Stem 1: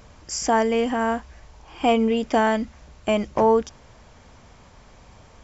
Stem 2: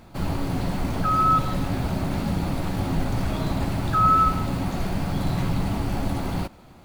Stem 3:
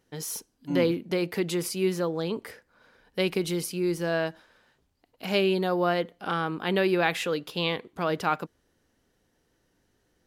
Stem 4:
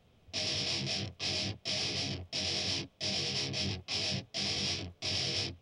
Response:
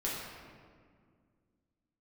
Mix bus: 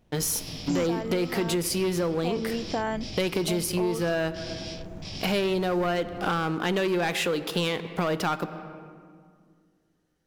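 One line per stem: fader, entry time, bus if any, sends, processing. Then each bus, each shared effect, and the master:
-7.0 dB, 0.40 s, no send, dry
-15.0 dB, 0.00 s, no send, median filter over 41 samples
-1.5 dB, 0.00 s, send -17.5 dB, sample leveller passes 3
-6.5 dB, 0.00 s, no send, dry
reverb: on, RT60 2.0 s, pre-delay 6 ms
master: compressor, threshold -24 dBFS, peak gain reduction 11.5 dB

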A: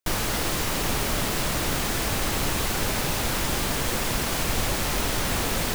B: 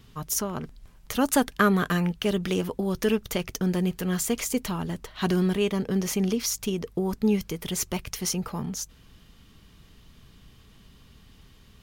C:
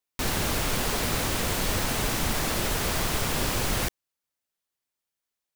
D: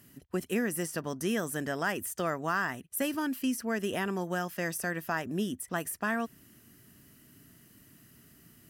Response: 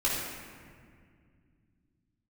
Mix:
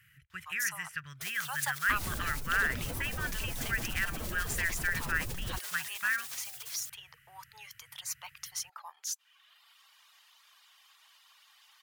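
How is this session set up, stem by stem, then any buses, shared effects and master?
-8.5 dB, 1.15 s, no send, spectral gate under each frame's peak -25 dB weak
+2.0 dB, 0.30 s, no send, steep high-pass 820 Hz 36 dB/oct; reverb removal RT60 0.89 s; auto duck -10 dB, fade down 0.25 s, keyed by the fourth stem
-10.0 dB, 1.70 s, no send, spectral contrast raised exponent 2
-4.0 dB, 0.00 s, no send, EQ curve 140 Hz 0 dB, 240 Hz -29 dB, 790 Hz -28 dB, 1400 Hz +7 dB, 2300 Hz +11 dB, 4600 Hz -7 dB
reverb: off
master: dry

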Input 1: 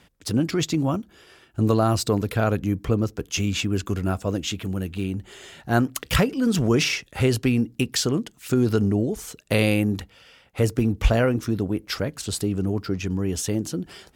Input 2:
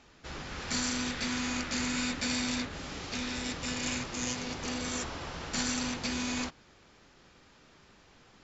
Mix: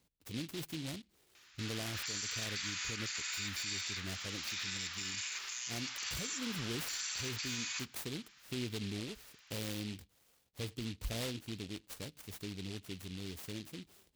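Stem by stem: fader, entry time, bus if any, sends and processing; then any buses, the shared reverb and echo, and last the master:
-19.0 dB, 0.00 s, no send, noise-modulated delay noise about 3200 Hz, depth 0.26 ms
+2.5 dB, 1.35 s, no send, Bessel high-pass 1900 Hz, order 4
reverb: off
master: limiter -29.5 dBFS, peak gain reduction 10.5 dB

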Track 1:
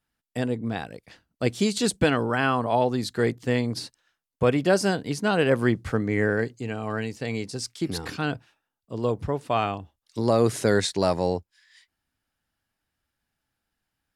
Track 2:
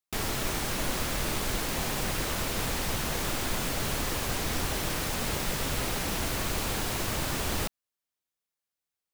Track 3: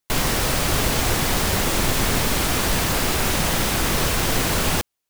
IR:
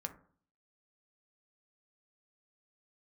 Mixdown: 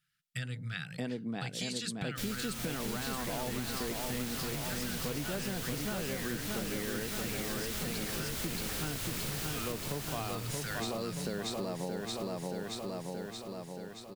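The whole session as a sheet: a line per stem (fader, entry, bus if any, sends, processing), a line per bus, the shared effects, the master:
0.0 dB, 0.00 s, bus A, send -22.5 dB, echo send -7 dB, resonant low shelf 110 Hz -11 dB, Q 3; limiter -13.5 dBFS, peak gain reduction 6.5 dB
-2.5 dB, 2.05 s, bus A, send -13 dB, echo send -7.5 dB, high shelf 6300 Hz +7.5 dB; requantised 10-bit, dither triangular
off
bus A: 0.0 dB, brick-wall FIR band-stop 170–1200 Hz; compressor, threshold -34 dBFS, peak gain reduction 11.5 dB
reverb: on, RT60 0.50 s, pre-delay 3 ms
echo: feedback echo 0.626 s, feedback 60%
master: bell 3500 Hz +3 dB 1.5 oct; compressor, threshold -33 dBFS, peak gain reduction 11 dB

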